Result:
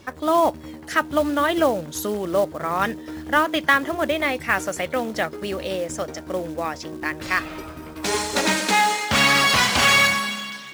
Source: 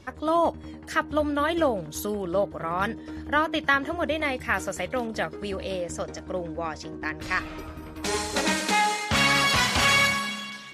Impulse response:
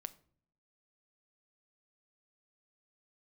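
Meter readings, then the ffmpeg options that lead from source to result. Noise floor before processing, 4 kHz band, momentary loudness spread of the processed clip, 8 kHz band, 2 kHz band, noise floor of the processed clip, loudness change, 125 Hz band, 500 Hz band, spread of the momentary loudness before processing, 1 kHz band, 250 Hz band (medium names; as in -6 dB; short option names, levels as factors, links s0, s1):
-42 dBFS, +4.5 dB, 13 LU, +5.0 dB, +4.5 dB, -39 dBFS, +4.5 dB, +1.0 dB, +4.0 dB, 13 LU, +4.5 dB, +3.5 dB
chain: -af "acrusher=bits=5:mode=log:mix=0:aa=0.000001,lowshelf=f=91:g=-10,volume=1.68"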